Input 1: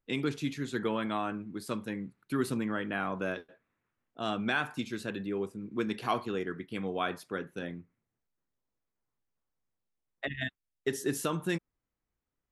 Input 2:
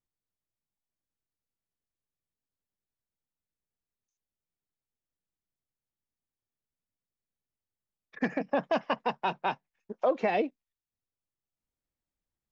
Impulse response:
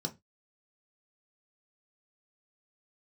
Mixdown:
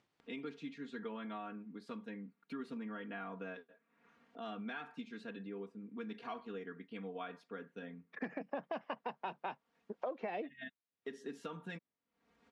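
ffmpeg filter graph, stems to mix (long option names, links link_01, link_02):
-filter_complex "[0:a]aecho=1:1:4.3:0.92,acompressor=mode=upward:threshold=-33dB:ratio=2.5,adelay=200,volume=-11.5dB[link_01];[1:a]volume=-1.5dB,asplit=2[link_02][link_03];[link_03]apad=whole_len=561011[link_04];[link_01][link_04]sidechaincompress=threshold=-32dB:ratio=8:attack=48:release=390[link_05];[link_05][link_02]amix=inputs=2:normalize=0,acompressor=mode=upward:threshold=-57dB:ratio=2.5,highpass=160,lowpass=3500,acompressor=threshold=-41dB:ratio=3"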